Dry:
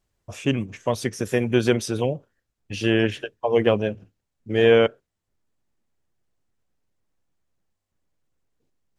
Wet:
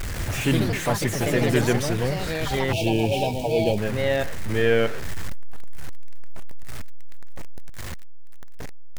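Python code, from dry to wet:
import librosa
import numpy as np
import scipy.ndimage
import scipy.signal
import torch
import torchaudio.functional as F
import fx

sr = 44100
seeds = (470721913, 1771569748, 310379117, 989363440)

y = x + 0.5 * 10.0 ** (-24.0 / 20.0) * np.sign(x)
y = fx.rider(y, sr, range_db=4, speed_s=2.0)
y = fx.echo_pitch(y, sr, ms=139, semitones=3, count=3, db_per_echo=-3.0)
y = fx.low_shelf(y, sr, hz=170.0, db=9.5)
y = fx.spec_box(y, sr, start_s=2.72, length_s=1.06, low_hz=950.0, high_hz=2200.0, gain_db=-25)
y = fx.peak_eq(y, sr, hz=1800.0, db=7.5, octaves=0.86)
y = F.gain(torch.from_numpy(y), -8.0).numpy()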